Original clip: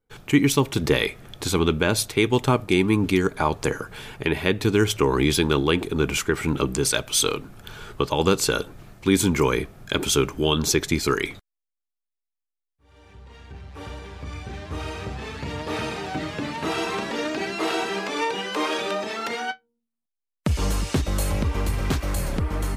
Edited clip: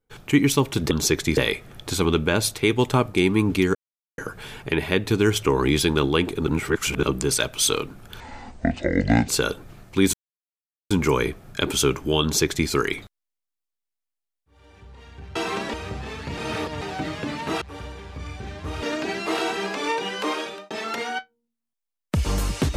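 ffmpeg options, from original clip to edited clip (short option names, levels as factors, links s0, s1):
-filter_complex "[0:a]asplit=17[s0][s1][s2][s3][s4][s5][s6][s7][s8][s9][s10][s11][s12][s13][s14][s15][s16];[s0]atrim=end=0.912[s17];[s1]atrim=start=10.548:end=11.012[s18];[s2]atrim=start=0.908:end=3.29,asetpts=PTS-STARTPTS,afade=t=out:st=2.378:d=0.004:c=hsin[s19];[s3]atrim=start=3.29:end=3.72,asetpts=PTS-STARTPTS,volume=0[s20];[s4]atrim=start=3.72:end=6.012,asetpts=PTS-STARTPTS,afade=t=in:d=0.004:c=hsin[s21];[s5]atrim=start=6.008:end=6.572,asetpts=PTS-STARTPTS,areverse[s22];[s6]atrim=start=6.568:end=7.744[s23];[s7]atrim=start=7.74:end=8.38,asetpts=PTS-STARTPTS,asetrate=26019,aresample=44100,atrim=end_sample=47837,asetpts=PTS-STARTPTS[s24];[s8]atrim=start=8.376:end=9.23,asetpts=PTS-STARTPTS,afade=t=out:st=0.85:d=0.004:c=hsin,apad=pad_dur=0.77[s25];[s9]atrim=start=9.23:end=13.682,asetpts=PTS-STARTPTS,afade=t=in:d=0.004:c=hsin[s26];[s10]atrim=start=16.768:end=17.152[s27];[s11]atrim=start=14.888:end=15.532[s28];[s12]atrim=start=15.528:end=15.972,asetpts=PTS-STARTPTS,areverse[s29];[s13]atrim=start=15.968:end=16.772[s30];[s14]atrim=start=13.678:end=14.892[s31];[s15]atrim=start=17.148:end=19.03,asetpts=PTS-STARTPTS,afade=t=out:st=1.422:d=0.46[s32];[s16]atrim=start=19.03,asetpts=PTS-STARTPTS,afade=t=in:d=0.004:c=hsin[s33];[s17][s18]acrossfade=d=0.004:c1=hsin:c2=hsin[s34];[s19][s20][s21]concat=n=3:v=0:a=1[s35];[s34][s35]acrossfade=d=0.004:c1=hsin:c2=hsin[s36];[s36][s22]acrossfade=d=0.004:c1=hsin:c2=hsin[s37];[s37][s23]acrossfade=d=0.004:c1=hsin:c2=hsin[s38];[s38][s24]acrossfade=d=0.004:c1=hsin:c2=hsin[s39];[s25][s26]concat=n=2:v=0:a=1[s40];[s39][s40]acrossfade=d=0.004:c1=hsin:c2=hsin[s41];[s41][s27]acrossfade=d=0.004:c1=hsin:c2=hsin[s42];[s42][s28]acrossfade=d=0.004:c1=hsin:c2=hsin[s43];[s43][s29]acrossfade=d=0.004:c1=hsin:c2=hsin[s44];[s44][s30]acrossfade=d=0.004:c1=hsin:c2=hsin[s45];[s45][s31]acrossfade=d=0.004:c1=hsin:c2=hsin[s46];[s32][s33]concat=n=2:v=0:a=1[s47];[s46][s47]acrossfade=d=0.004:c1=hsin:c2=hsin"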